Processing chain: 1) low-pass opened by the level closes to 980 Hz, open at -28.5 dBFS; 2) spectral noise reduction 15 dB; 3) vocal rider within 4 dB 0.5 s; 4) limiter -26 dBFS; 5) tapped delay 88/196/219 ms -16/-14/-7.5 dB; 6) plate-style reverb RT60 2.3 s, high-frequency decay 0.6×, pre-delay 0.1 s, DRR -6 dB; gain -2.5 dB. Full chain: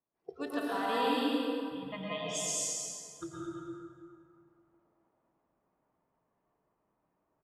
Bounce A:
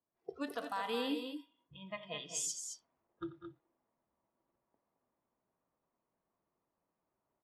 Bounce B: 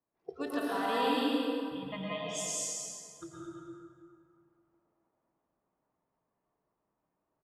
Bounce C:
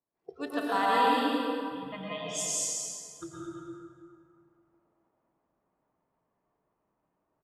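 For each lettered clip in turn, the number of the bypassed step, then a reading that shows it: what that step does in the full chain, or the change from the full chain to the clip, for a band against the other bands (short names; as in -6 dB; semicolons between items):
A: 6, echo-to-direct 7.0 dB to -6.0 dB; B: 3, 8 kHz band -2.0 dB; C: 4, crest factor change +2.0 dB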